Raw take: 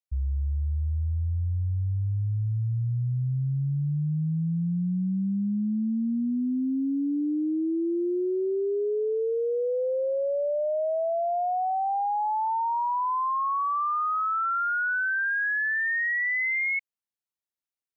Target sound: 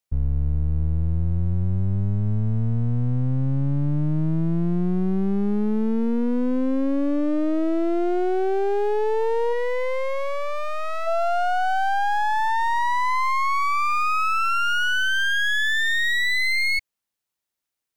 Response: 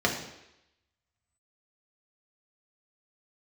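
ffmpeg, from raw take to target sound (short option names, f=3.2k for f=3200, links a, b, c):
-filter_complex "[0:a]aeval=exprs='clip(val(0),-1,0.00631)':c=same,asplit=3[a][b][c];[a]afade=t=out:st=9.52:d=0.02[d];[b]equalizer=f=630:t=o:w=0.33:g=-12,equalizer=f=1k:t=o:w=0.33:g=-6,equalizer=f=2k:t=o:w=0.33:g=10,afade=t=in:st=9.52:d=0.02,afade=t=out:st=11.06:d=0.02[e];[c]afade=t=in:st=11.06:d=0.02[f];[d][e][f]amix=inputs=3:normalize=0,volume=8.5dB"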